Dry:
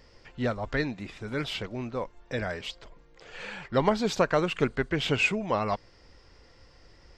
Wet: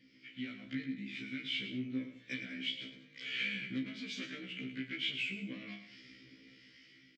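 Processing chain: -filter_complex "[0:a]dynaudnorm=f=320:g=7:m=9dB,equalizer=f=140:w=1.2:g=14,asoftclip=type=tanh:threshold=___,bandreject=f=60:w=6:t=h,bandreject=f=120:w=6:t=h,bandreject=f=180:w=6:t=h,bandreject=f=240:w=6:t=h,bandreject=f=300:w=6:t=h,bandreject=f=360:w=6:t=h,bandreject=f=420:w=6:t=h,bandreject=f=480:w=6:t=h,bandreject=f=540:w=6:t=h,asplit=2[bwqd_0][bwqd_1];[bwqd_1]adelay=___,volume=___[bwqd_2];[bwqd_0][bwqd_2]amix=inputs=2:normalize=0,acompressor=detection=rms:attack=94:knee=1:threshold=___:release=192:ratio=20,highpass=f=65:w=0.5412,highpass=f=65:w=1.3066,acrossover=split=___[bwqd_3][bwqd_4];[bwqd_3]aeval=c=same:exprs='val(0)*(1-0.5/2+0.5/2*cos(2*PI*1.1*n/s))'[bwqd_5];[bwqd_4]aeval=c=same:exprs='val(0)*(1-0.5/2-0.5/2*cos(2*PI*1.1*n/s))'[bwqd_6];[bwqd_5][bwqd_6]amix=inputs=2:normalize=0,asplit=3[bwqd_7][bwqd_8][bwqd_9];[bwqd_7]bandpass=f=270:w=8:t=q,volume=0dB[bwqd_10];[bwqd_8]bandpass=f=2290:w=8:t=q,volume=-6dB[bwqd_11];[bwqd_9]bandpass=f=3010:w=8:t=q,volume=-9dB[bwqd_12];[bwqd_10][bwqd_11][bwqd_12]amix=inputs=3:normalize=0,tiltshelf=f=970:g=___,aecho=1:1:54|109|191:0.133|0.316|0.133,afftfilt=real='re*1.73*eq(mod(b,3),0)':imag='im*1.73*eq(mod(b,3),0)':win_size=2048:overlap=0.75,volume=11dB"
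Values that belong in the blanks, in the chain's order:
-13.5dB, 34, -9dB, -32dB, 720, -6.5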